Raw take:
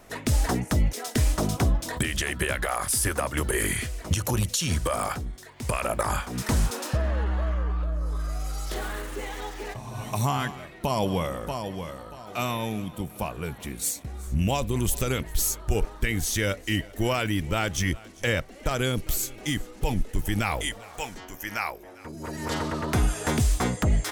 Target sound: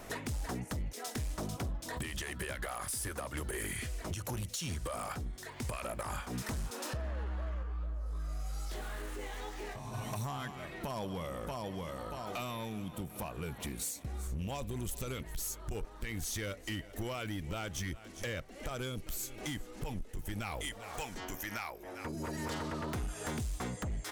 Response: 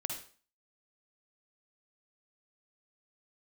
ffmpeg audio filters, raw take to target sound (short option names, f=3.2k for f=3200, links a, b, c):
-filter_complex "[0:a]acompressor=threshold=-40dB:ratio=4,volume=35.5dB,asoftclip=hard,volume=-35.5dB,asplit=3[a][b][c];[a]afade=t=out:st=7.62:d=0.02[d];[b]flanger=delay=18.5:depth=2.5:speed=2.3,afade=t=in:st=7.62:d=0.02,afade=t=out:st=9.92:d=0.02[e];[c]afade=t=in:st=9.92:d=0.02[f];[d][e][f]amix=inputs=3:normalize=0,volume=3dB"